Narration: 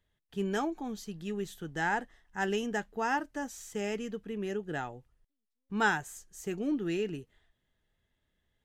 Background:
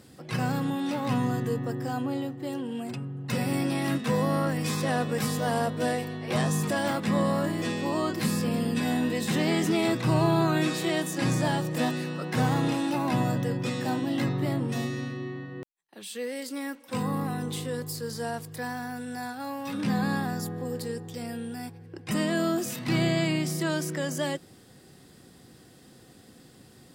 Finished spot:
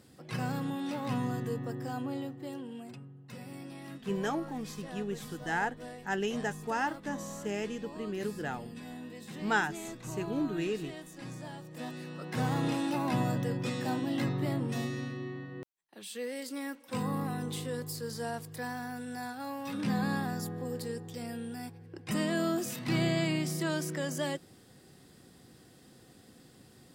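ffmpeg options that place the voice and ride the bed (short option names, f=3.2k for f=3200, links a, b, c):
-filter_complex "[0:a]adelay=3700,volume=-1dB[a];[1:a]volume=7.5dB,afade=t=out:st=2.28:d=1:silence=0.266073,afade=t=in:st=11.69:d=1.05:silence=0.211349[b];[a][b]amix=inputs=2:normalize=0"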